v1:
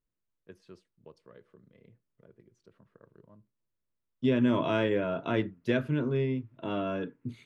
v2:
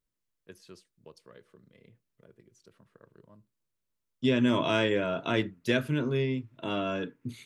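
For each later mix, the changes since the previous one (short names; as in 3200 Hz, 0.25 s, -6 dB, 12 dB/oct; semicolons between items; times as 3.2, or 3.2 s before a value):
master: remove LPF 1500 Hz 6 dB/oct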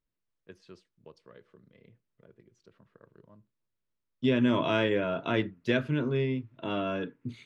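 master: add Bessel low-pass 3500 Hz, order 2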